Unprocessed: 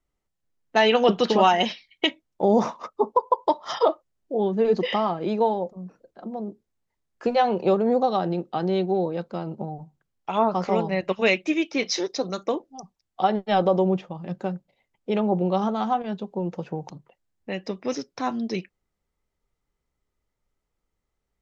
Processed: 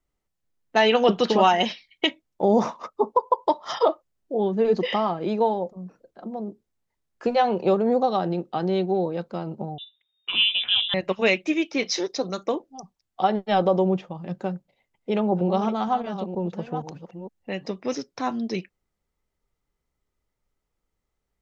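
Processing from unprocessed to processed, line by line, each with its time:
9.78–10.94 s: frequency inversion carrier 3.7 kHz
14.47–17.71 s: chunks repeated in reverse 470 ms, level -10 dB

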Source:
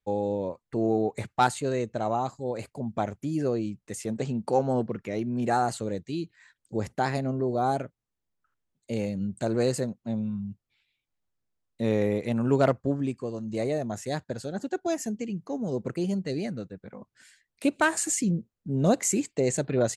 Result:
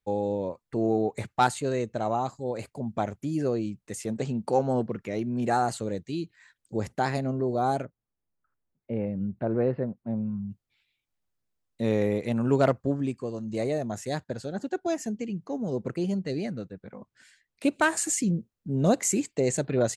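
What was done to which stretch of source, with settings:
7.85–10.50 s: Gaussian low-pass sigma 4.2 samples
14.24–17.66 s: treble shelf 9.7 kHz -10.5 dB

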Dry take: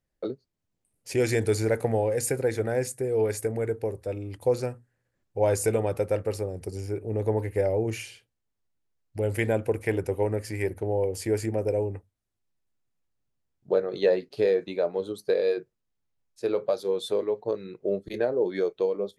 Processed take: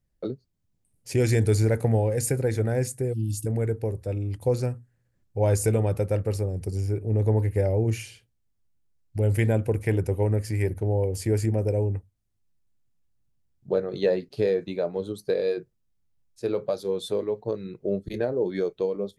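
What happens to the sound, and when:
3.13–3.46 s: spectral selection erased 340–2600 Hz
whole clip: tone controls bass +11 dB, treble +3 dB; trim -2 dB

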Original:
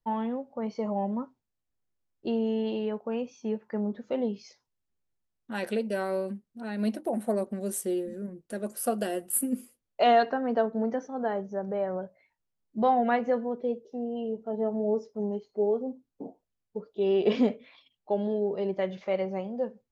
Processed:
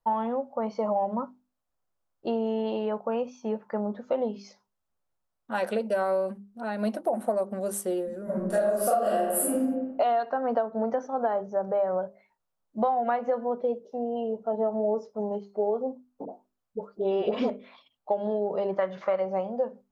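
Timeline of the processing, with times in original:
8.24–9.52 s: reverb throw, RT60 1 s, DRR -12 dB
16.25–17.50 s: phase dispersion highs, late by 72 ms, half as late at 900 Hz
18.71–19.20 s: high-order bell 1.4 kHz +8.5 dB 1.1 oct
whole clip: high-order bell 860 Hz +9 dB; hum notches 50/100/150/200/250/300/350/400 Hz; compression 10:1, threshold -22 dBFS

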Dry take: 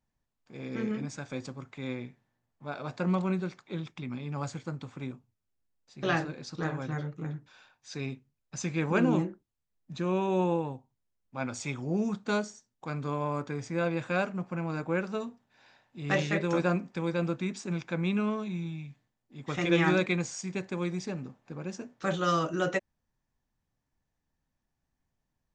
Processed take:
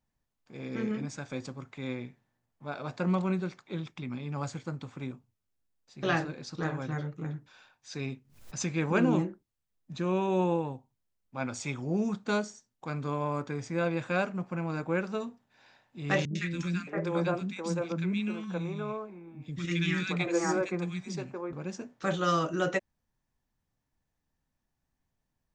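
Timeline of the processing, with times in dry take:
8.11–8.74 s: swell ahead of each attack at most 100 dB/s
16.25–21.53 s: three bands offset in time lows, highs, mids 100/620 ms, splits 280/1600 Hz

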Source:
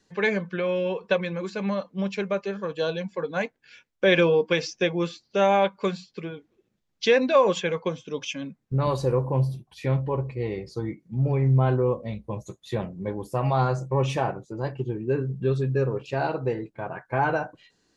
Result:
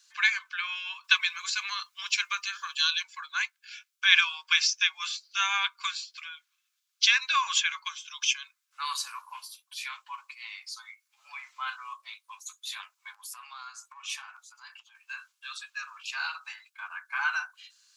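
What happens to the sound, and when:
1.04–3.03 s: treble shelf 2.5 kHz +7.5 dB
13.14–14.95 s: compression 10:1, threshold -31 dBFS
whole clip: steep high-pass 1.1 kHz 48 dB/octave; treble shelf 2.5 kHz +12 dB; band-stop 1.9 kHz, Q 6.8

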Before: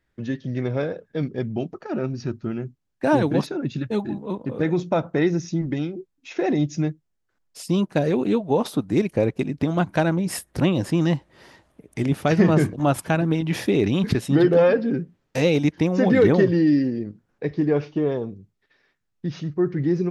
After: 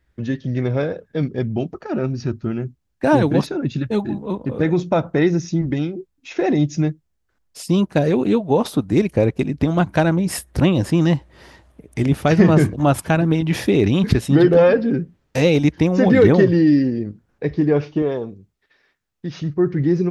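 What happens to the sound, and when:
18.02–19.42 s: bass shelf 190 Hz -10 dB
whole clip: peaking EQ 61 Hz +12.5 dB 0.93 oct; trim +3.5 dB

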